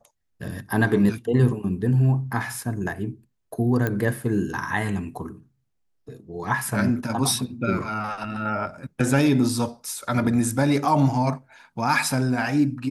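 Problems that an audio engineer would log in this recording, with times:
3.87 s: pop -12 dBFS

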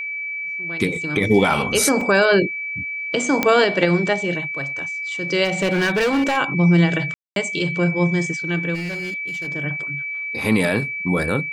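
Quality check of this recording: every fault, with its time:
whine 2.3 kHz -25 dBFS
2.01 s: dropout 2.4 ms
3.43 s: pop -3 dBFS
5.44–6.38 s: clipped -15.5 dBFS
7.14–7.36 s: dropout 222 ms
8.74–9.48 s: clipped -24 dBFS

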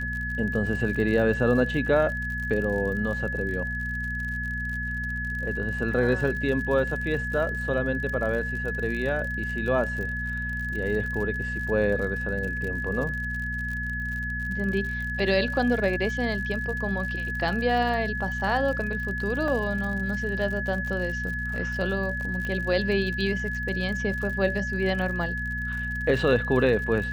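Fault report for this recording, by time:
crackle 58 per s -33 dBFS
hum 60 Hz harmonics 4 -33 dBFS
whine 1.7 kHz -30 dBFS
19.48 s: dropout 2.5 ms
22.45 s: pop -20 dBFS

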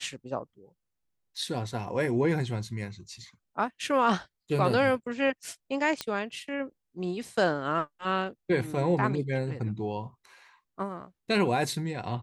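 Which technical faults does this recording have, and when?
6.01 s: pop -15 dBFS

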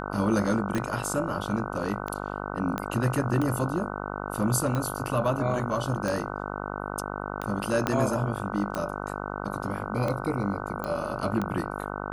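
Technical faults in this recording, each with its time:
buzz 50 Hz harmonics 30 -34 dBFS
tick 45 rpm -17 dBFS
0.78 s: dropout 2.1 ms
2.78 s: pop -15 dBFS
7.87 s: pop -10 dBFS
10.84 s: pop -18 dBFS

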